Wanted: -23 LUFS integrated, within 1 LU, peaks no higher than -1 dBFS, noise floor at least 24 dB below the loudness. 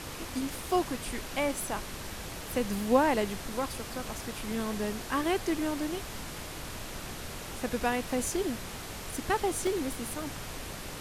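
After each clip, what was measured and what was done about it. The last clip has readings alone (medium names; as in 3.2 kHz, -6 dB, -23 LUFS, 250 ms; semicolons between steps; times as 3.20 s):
dropouts 3; longest dropout 1.5 ms; noise floor -41 dBFS; noise floor target -57 dBFS; loudness -32.5 LUFS; peak level -11.0 dBFS; loudness target -23.0 LUFS
-> interpolate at 4.60/9.67/10.22 s, 1.5 ms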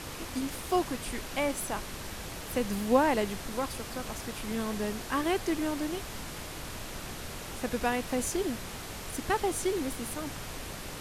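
dropouts 0; noise floor -41 dBFS; noise floor target -57 dBFS
-> noise print and reduce 16 dB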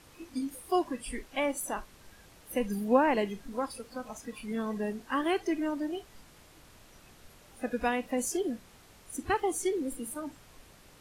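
noise floor -57 dBFS; loudness -32.5 LUFS; peak level -11.0 dBFS; loudness target -23.0 LUFS
-> trim +9.5 dB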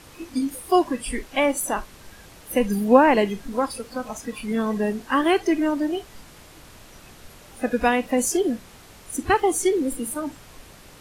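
loudness -23.0 LUFS; peak level -1.5 dBFS; noise floor -47 dBFS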